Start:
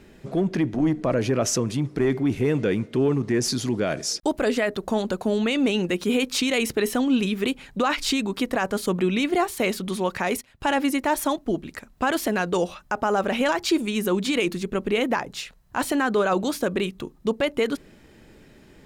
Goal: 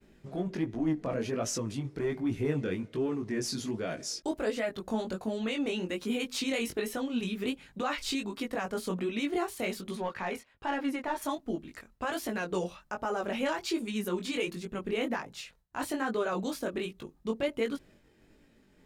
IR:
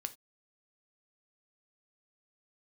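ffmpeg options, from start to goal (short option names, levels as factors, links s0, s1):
-filter_complex "[0:a]aphaser=in_gain=1:out_gain=1:delay=4.8:decay=0.2:speed=0.4:type=triangular,agate=range=0.0224:threshold=0.00501:ratio=3:detection=peak,asettb=1/sr,asplit=3[s0][s1][s2];[s0]atrim=end=9.954[s3];[s1]atrim=start=9.95:end=11.22,asetpts=PTS-STARTPTS,afade=t=in:d=0.004:c=qsin,afade=t=out:st=1.266:d=0.004:c=qsin,asplit=2[s4][s5];[s5]highpass=f=720:p=1,volume=3.16,asoftclip=type=tanh:threshold=0.266[s6];[s4][s6]amix=inputs=2:normalize=0,lowpass=f=1500:p=1,volume=0.501[s7];[s2]atrim=start=11.216[s8];[s3][s7]acrossfade=d=0.004:c1=hsin:c2=qsin[s9];[s9][s8]acrossfade=d=0.004:c1=qsin:c2=hsin,flanger=delay=17.5:depth=5:speed=1.3,volume=0.473"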